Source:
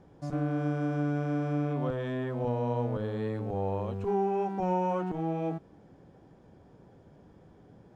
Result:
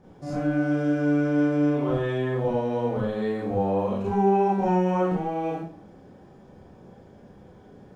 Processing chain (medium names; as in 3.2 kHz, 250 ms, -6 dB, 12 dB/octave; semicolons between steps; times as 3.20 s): Schroeder reverb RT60 0.42 s, combs from 30 ms, DRR -6.5 dB